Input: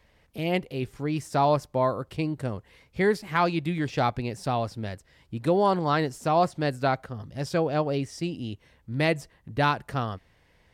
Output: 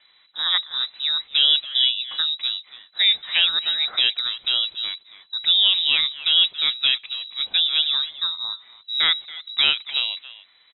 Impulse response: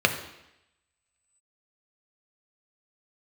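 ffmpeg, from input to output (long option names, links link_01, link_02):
-filter_complex "[0:a]asplit=2[link_01][link_02];[link_02]adelay=280,highpass=300,lowpass=3400,asoftclip=type=hard:threshold=-20.5dB,volume=-14dB[link_03];[link_01][link_03]amix=inputs=2:normalize=0,acontrast=87,lowpass=frequency=3400:width_type=q:width=0.5098,lowpass=frequency=3400:width_type=q:width=0.6013,lowpass=frequency=3400:width_type=q:width=0.9,lowpass=frequency=3400:width_type=q:width=2.563,afreqshift=-4000,volume=-2.5dB"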